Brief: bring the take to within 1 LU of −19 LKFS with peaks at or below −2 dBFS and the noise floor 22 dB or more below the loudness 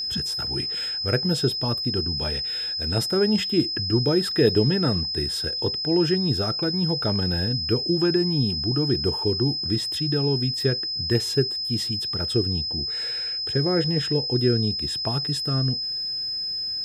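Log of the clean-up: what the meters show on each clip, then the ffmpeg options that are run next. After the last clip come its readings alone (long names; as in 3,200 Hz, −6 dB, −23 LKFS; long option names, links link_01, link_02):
interfering tone 5,100 Hz; level of the tone −26 dBFS; integrated loudness −23.0 LKFS; sample peak −5.5 dBFS; target loudness −19.0 LKFS
→ -af "bandreject=frequency=5100:width=30"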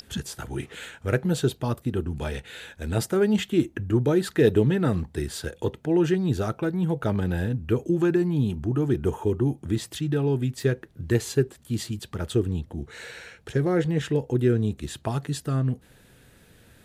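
interfering tone none found; integrated loudness −26.0 LKFS; sample peak −6.5 dBFS; target loudness −19.0 LKFS
→ -af "volume=7dB,alimiter=limit=-2dB:level=0:latency=1"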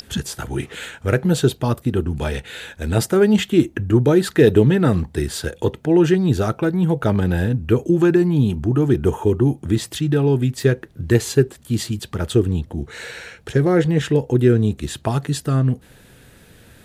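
integrated loudness −19.0 LKFS; sample peak −2.0 dBFS; background noise floor −49 dBFS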